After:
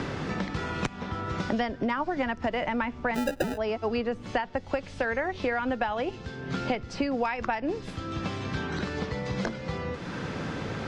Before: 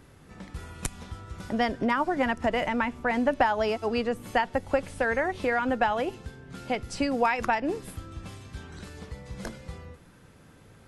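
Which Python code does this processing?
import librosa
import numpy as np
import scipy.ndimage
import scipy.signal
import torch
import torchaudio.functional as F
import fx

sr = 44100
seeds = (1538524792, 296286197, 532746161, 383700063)

y = scipy.signal.sosfilt(scipy.signal.butter(4, 5800.0, 'lowpass', fs=sr, output='sos'), x)
y = fx.sample_hold(y, sr, seeds[0], rate_hz=1100.0, jitter_pct=0, at=(3.14, 3.56), fade=0.02)
y = fx.band_squash(y, sr, depth_pct=100)
y = y * librosa.db_to_amplitude(-2.5)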